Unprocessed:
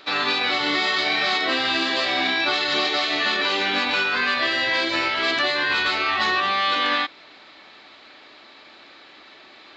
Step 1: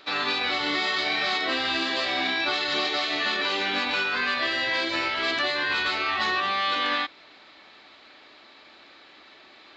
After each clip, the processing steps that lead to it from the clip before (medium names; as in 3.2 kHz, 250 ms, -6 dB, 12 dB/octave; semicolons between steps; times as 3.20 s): peaking EQ 64 Hz +6 dB 0.27 oct; trim -4 dB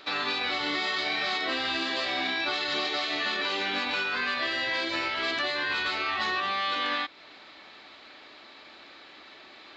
compression 1.5:1, threshold -36 dBFS, peak gain reduction 5 dB; trim +1.5 dB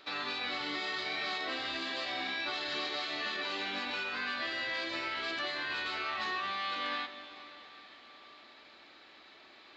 plate-style reverb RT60 4.4 s, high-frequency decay 1×, DRR 9 dB; trim -7.5 dB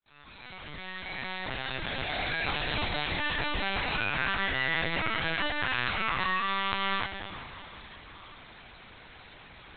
fade-in on the opening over 2.65 s; filtered feedback delay 198 ms, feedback 67%, low-pass 1.9 kHz, level -9 dB; LPC vocoder at 8 kHz pitch kept; trim +6.5 dB